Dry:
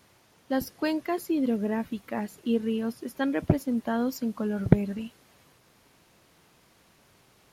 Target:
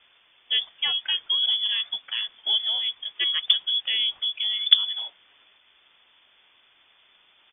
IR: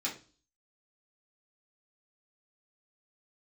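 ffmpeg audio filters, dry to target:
-filter_complex "[0:a]asplit=3[a][b][c];[b]asetrate=22050,aresample=44100,atempo=2,volume=-16dB[d];[c]asetrate=33038,aresample=44100,atempo=1.33484,volume=-17dB[e];[a][d][e]amix=inputs=3:normalize=0,lowpass=f=3.1k:t=q:w=0.5098,lowpass=f=3.1k:t=q:w=0.6013,lowpass=f=3.1k:t=q:w=0.9,lowpass=f=3.1k:t=q:w=2.563,afreqshift=-3600,volume=2dB"

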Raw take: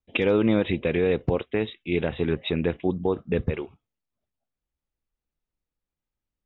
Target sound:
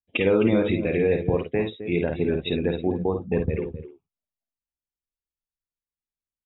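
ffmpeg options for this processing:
-filter_complex "[0:a]asplit=2[a][b];[b]aecho=0:1:262:0.316[c];[a][c]amix=inputs=2:normalize=0,afftdn=nr=16:nf=-34,asplit=2[d][e];[e]aecho=0:1:52|64:0.501|0.188[f];[d][f]amix=inputs=2:normalize=0"

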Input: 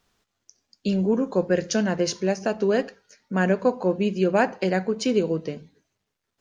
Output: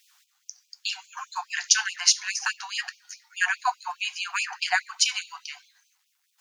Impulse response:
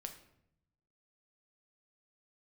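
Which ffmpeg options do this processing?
-af "crystalizer=i=1:c=0,afftfilt=real='re*gte(b*sr/1024,700*pow(2400/700,0.5+0.5*sin(2*PI*4.8*pts/sr)))':imag='im*gte(b*sr/1024,700*pow(2400/700,0.5+0.5*sin(2*PI*4.8*pts/sr)))':win_size=1024:overlap=0.75,volume=8dB"

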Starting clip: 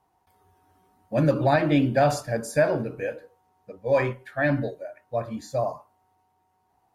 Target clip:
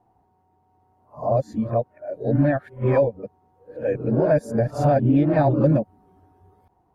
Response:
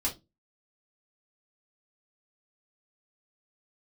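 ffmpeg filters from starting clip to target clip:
-af "areverse,tiltshelf=f=1.2k:g=10,acompressor=threshold=-14dB:ratio=6"

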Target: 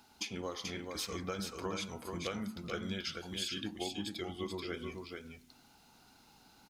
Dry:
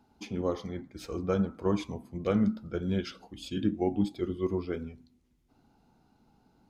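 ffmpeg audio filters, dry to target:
-af "tiltshelf=f=1.1k:g=-10,acompressor=threshold=-43dB:ratio=6,aecho=1:1:434:0.596,volume=6dB"

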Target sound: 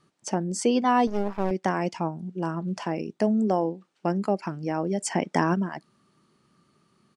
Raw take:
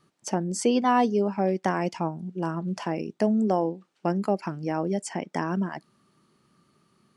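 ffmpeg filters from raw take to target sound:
-filter_complex "[0:a]asplit=3[a][b][c];[a]afade=t=out:st=5:d=0.02[d];[b]acontrast=47,afade=t=in:st=5:d=0.02,afade=t=out:st=5.53:d=0.02[e];[c]afade=t=in:st=5.53:d=0.02[f];[d][e][f]amix=inputs=3:normalize=0,aresample=22050,aresample=44100,asettb=1/sr,asplit=3[g][h][i];[g]atrim=end=1.074[j];[h]atrim=start=1.07:end=1.51,asetpts=PTS-STARTPTS,afade=t=in:d=0.004:c=qsin,afade=t=out:st=0.436:d=0.004:c=qsin,aeval=exprs='max(val(0),0)':c=same[k];[i]atrim=start=1.506[l];[j][k]acrossfade=d=0.004:c1=hsin:c2=qsin[m];[m][l]acrossfade=d=0.004:c1=qsin:c2=hsin"

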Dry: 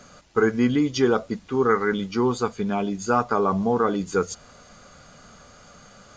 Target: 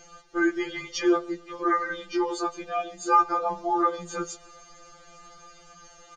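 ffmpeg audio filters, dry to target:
-filter_complex "[0:a]aecho=1:1:2.5:0.89,asplit=2[a][b];[b]adelay=133,lowpass=f=4.5k:p=1,volume=-23dB,asplit=2[c][d];[d]adelay=133,lowpass=f=4.5k:p=1,volume=0.47,asplit=2[e][f];[f]adelay=133,lowpass=f=4.5k:p=1,volume=0.47[g];[c][e][g]amix=inputs=3:normalize=0[h];[a][h]amix=inputs=2:normalize=0,afftfilt=real='re*2.83*eq(mod(b,8),0)':imag='im*2.83*eq(mod(b,8),0)':win_size=2048:overlap=0.75,volume=-2dB"

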